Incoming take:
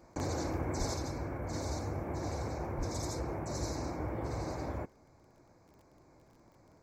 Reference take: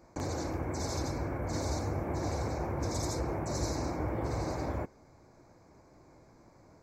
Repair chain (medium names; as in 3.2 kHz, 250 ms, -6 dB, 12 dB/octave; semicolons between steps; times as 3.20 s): de-click; 0.78–0.90 s: high-pass 140 Hz 24 dB/octave; 0.94 s: gain correction +3.5 dB; 2.77–2.89 s: high-pass 140 Hz 24 dB/octave